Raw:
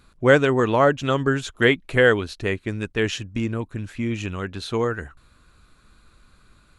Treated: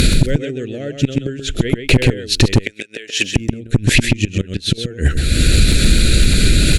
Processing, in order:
upward compression, threshold −21 dBFS
gate with flip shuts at −16 dBFS, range −32 dB
Butterworth band-reject 1,000 Hz, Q 0.61
0:01.39–0:02.04: high-shelf EQ 5,900 Hz −9 dB
0:02.60–0:03.36: high-pass filter 740 Hz 12 dB per octave
0:04.33–0:04.78: downward compressor 3 to 1, threshold −45 dBFS, peak gain reduction 13.5 dB
asymmetric clip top −31.5 dBFS, bottom −19.5 dBFS
single-tap delay 130 ms −7 dB
boost into a limiter +29 dB
level −1 dB

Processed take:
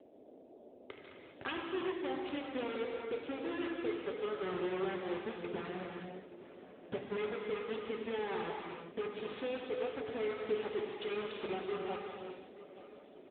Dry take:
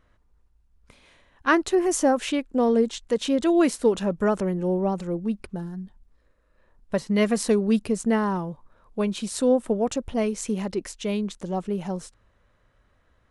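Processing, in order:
phase distortion by the signal itself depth 0.21 ms
low-shelf EQ 140 Hz −7 dB
comb filter 2.4 ms, depth 78%
downward compressor 12 to 1, threshold −44 dBFS, peak gain reduction 31.5 dB
tuned comb filter 72 Hz, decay 0.21 s, harmonics all, mix 40%
bit reduction 8 bits
noise in a band 230–640 Hz −67 dBFS
on a send: repeating echo 876 ms, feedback 46%, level −17 dB
on the sum: reverb whose tail is shaped and stops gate 430 ms flat, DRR 0 dB
level +8 dB
AMR narrowband 10.2 kbit/s 8,000 Hz

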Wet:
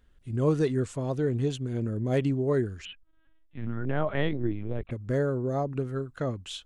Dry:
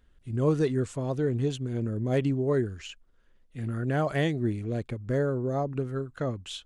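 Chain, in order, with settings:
0:02.85–0:04.91: linear-prediction vocoder at 8 kHz pitch kept

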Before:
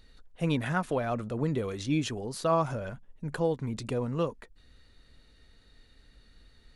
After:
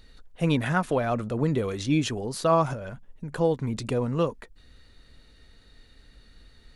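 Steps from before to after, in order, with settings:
0:02.73–0:03.36: downward compressor, threshold −37 dBFS, peak gain reduction 6.5 dB
level +4.5 dB

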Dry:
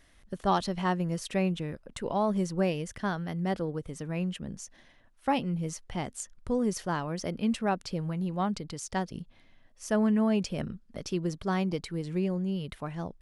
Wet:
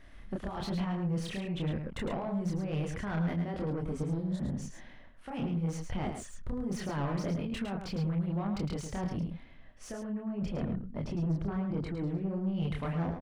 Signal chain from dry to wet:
0:03.91–0:04.44: healed spectral selection 520–3,400 Hz both
0:10.20–0:12.31: high-shelf EQ 2,000 Hz −11.5 dB
compressor whose output falls as the input rises −34 dBFS, ratio −1
multi-voice chorus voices 2, 1.1 Hz, delay 28 ms, depth 3 ms
soft clipping −35.5 dBFS, distortion −11 dB
bass and treble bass +4 dB, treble −13 dB
mains-hum notches 50/100 Hz
single-tap delay 108 ms −7 dB
level +4.5 dB

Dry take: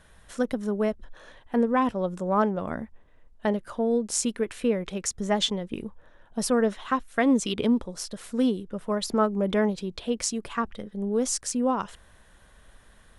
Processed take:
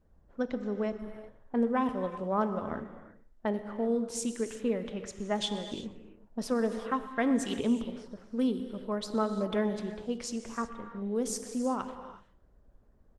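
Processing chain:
low-pass that shuts in the quiet parts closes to 500 Hz, open at −22 dBFS
on a send: repeating echo 123 ms, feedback 31%, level −21.5 dB
on the sum: reverb whose tail is shaped and stops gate 400 ms flat, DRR 8 dB
level −6 dB
Opus 20 kbit/s 48,000 Hz

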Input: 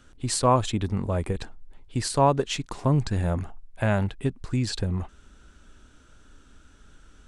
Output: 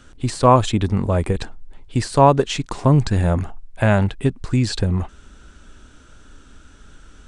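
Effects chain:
de-essing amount 70%
downsampling to 22,050 Hz
level +7.5 dB

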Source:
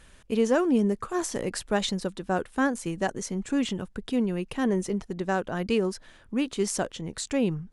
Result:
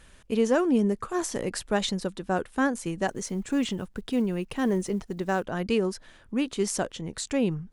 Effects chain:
0:03.08–0:05.46: one scale factor per block 7 bits

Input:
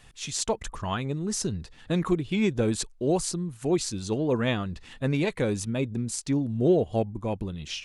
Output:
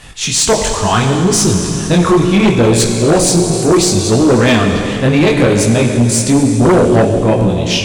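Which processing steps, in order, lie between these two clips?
in parallel at −6 dB: gain into a clipping stage and back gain 26.5 dB
on the sum: four-comb reverb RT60 3.2 s, combs from 30 ms, DRR 4 dB
multi-voice chorus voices 2, 0.7 Hz, delay 21 ms, depth 4.9 ms
harmonic generator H 5 −6 dB, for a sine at −11 dBFS
level +7.5 dB

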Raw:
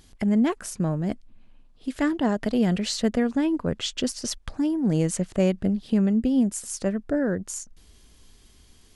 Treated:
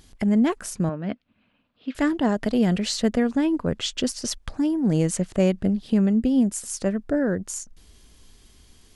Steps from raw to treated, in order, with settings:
0:00.89–0:01.95: loudspeaker in its box 140–3,900 Hz, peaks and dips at 150 Hz −7 dB, 360 Hz −8 dB, 820 Hz −4 dB, 1,400 Hz +4 dB, 2,600 Hz +4 dB
level +1.5 dB

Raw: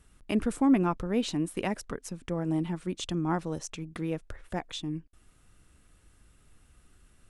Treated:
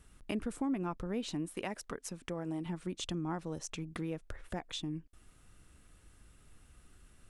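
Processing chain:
0:01.54–0:02.66: low-shelf EQ 250 Hz −8 dB
downward compressor 2.5 to 1, threshold −37 dBFS, peak gain reduction 12.5 dB

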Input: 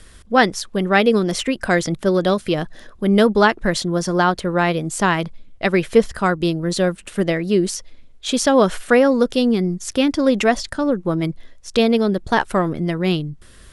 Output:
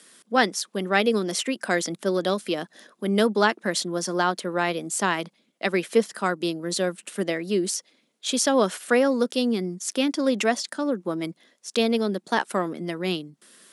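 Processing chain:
Butterworth high-pass 190 Hz 36 dB per octave
high-shelf EQ 4,400 Hz +8 dB
level −6.5 dB

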